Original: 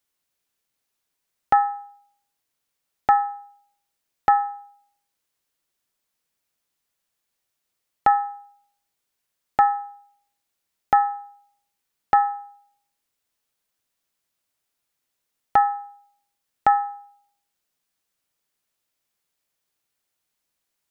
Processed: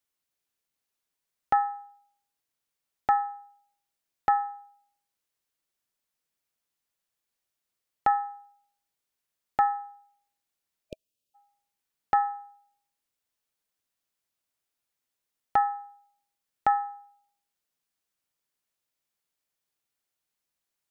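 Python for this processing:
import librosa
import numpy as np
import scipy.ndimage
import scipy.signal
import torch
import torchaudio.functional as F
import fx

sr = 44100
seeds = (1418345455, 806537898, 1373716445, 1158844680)

y = fx.spec_erase(x, sr, start_s=10.91, length_s=0.44, low_hz=640.0, high_hz=2400.0)
y = y * 10.0 ** (-6.0 / 20.0)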